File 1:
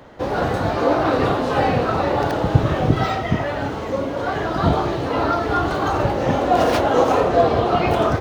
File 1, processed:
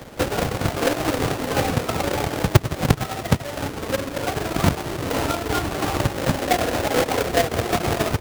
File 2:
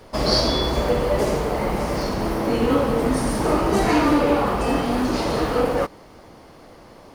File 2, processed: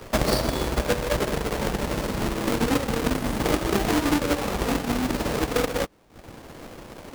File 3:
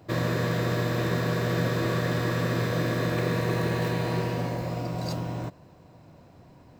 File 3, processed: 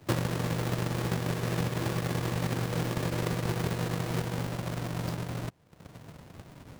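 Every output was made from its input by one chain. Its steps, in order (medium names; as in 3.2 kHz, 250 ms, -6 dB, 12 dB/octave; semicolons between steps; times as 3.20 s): square wave that keeps the level; transient shaper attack +10 dB, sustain -11 dB; three bands compressed up and down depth 40%; trim -10 dB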